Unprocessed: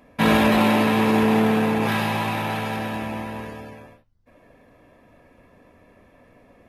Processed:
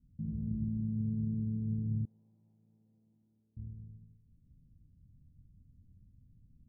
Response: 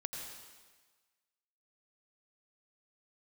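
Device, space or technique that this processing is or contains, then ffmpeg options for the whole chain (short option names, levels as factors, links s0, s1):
club heard from the street: -filter_complex "[0:a]alimiter=limit=0.188:level=0:latency=1:release=22,lowpass=f=150:w=0.5412,lowpass=f=150:w=1.3066[s0];[1:a]atrim=start_sample=2205[s1];[s0][s1]afir=irnorm=-1:irlink=0,asettb=1/sr,asplit=3[s2][s3][s4];[s2]atrim=end=2.054[s5];[s3]atrim=start=2.05:end=3.57,asetpts=PTS-STARTPTS,afade=t=in:d=0.004:c=qsin,afade=t=out:st=1.516:d=0.004:c=qsin,highpass=940[s6];[s4]atrim=start=3.566[s7];[s5][s6]acrossfade=d=0.004:c1=hsin:c2=qsin[s8];[s8][s7]acrossfade=d=0.004:c1=qsin:c2=hsin"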